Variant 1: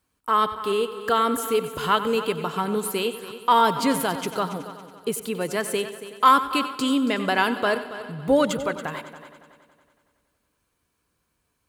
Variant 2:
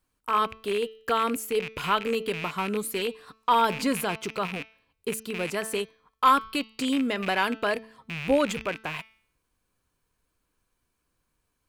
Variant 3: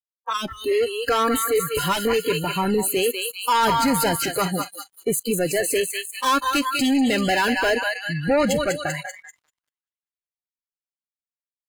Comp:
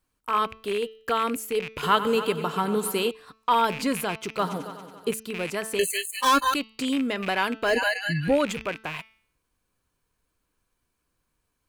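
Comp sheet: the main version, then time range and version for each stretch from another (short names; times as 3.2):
2
1.83–3.11 from 1
4.39–5.11 from 1
5.79–6.54 from 3
7.7–8.29 from 3, crossfade 0.16 s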